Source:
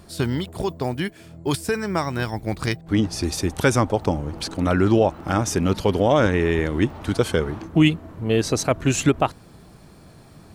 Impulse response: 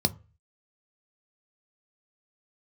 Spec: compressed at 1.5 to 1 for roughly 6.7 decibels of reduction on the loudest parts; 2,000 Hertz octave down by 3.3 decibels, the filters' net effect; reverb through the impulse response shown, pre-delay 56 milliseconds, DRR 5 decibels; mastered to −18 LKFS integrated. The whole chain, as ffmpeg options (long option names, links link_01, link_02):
-filter_complex "[0:a]equalizer=frequency=2000:width_type=o:gain=-4.5,acompressor=threshold=-31dB:ratio=1.5,asplit=2[link_01][link_02];[1:a]atrim=start_sample=2205,adelay=56[link_03];[link_02][link_03]afir=irnorm=-1:irlink=0,volume=-14dB[link_04];[link_01][link_04]amix=inputs=2:normalize=0,volume=5.5dB"